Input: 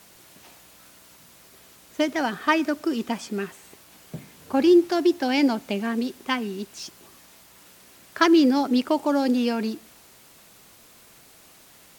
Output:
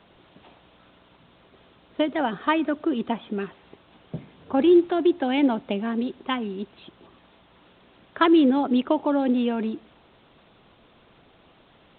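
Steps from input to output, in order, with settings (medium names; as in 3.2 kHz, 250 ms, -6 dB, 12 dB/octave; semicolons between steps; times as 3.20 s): peaking EQ 2.1 kHz -7.5 dB 1.4 oct; harmonic-percussive split percussive +4 dB; A-law 64 kbps 8 kHz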